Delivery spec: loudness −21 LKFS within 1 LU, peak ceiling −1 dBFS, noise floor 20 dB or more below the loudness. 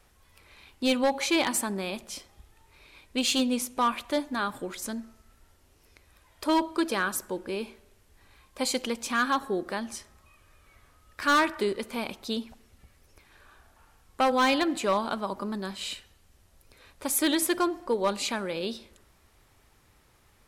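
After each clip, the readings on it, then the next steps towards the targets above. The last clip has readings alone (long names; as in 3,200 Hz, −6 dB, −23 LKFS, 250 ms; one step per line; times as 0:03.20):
share of clipped samples 0.6%; peaks flattened at −18.0 dBFS; integrated loudness −28.5 LKFS; sample peak −18.0 dBFS; target loudness −21.0 LKFS
→ clipped peaks rebuilt −18 dBFS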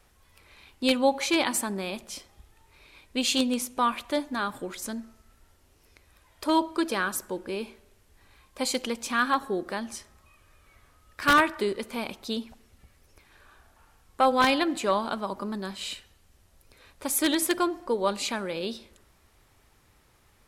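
share of clipped samples 0.0%; integrated loudness −27.5 LKFS; sample peak −9.0 dBFS; target loudness −21.0 LKFS
→ level +6.5 dB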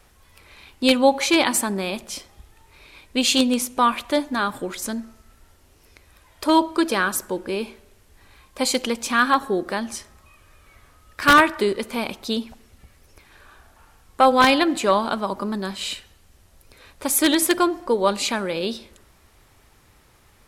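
integrated loudness −21.0 LKFS; sample peak −2.5 dBFS; background noise floor −56 dBFS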